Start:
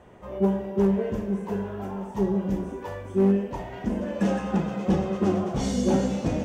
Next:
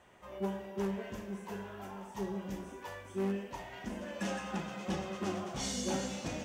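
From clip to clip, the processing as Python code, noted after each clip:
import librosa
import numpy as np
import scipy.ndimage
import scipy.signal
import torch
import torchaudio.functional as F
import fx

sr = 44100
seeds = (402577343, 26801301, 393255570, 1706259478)

y = fx.tilt_shelf(x, sr, db=-7.5, hz=970.0)
y = fx.notch(y, sr, hz=460.0, q=12.0)
y = y * 10.0 ** (-7.5 / 20.0)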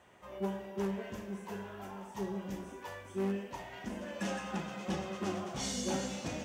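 y = scipy.signal.sosfilt(scipy.signal.butter(2, 51.0, 'highpass', fs=sr, output='sos'), x)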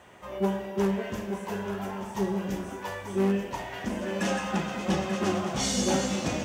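y = x + 10.0 ** (-10.0 / 20.0) * np.pad(x, (int(886 * sr / 1000.0), 0))[:len(x)]
y = y * 10.0 ** (9.0 / 20.0)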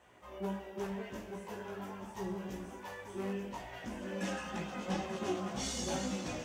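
y = fx.hum_notches(x, sr, base_hz=50, count=4)
y = fx.chorus_voices(y, sr, voices=4, hz=0.75, base_ms=18, depth_ms=2.1, mix_pct=45)
y = y * 10.0 ** (-6.5 / 20.0)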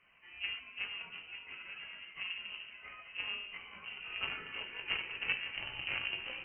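y = fx.cheby_harmonics(x, sr, harmonics=(2, 3), levels_db=(-9, -14), full_scale_db=-23.5)
y = fx.freq_invert(y, sr, carrier_hz=3000)
y = y * 10.0 ** (3.0 / 20.0)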